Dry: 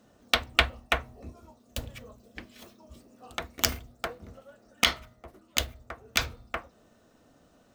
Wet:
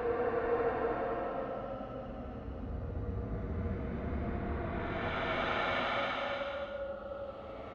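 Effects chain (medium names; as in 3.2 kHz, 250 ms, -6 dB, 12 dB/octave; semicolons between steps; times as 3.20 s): time reversed locally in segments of 157 ms; low-pass 4.9 kHz 12 dB/octave; on a send: delay 1063 ms -9 dB; on the sum: level-controlled noise filter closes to 1.5 kHz, open at -25.5 dBFS; Paulstretch 25×, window 0.10 s, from 4.20 s; trim +8.5 dB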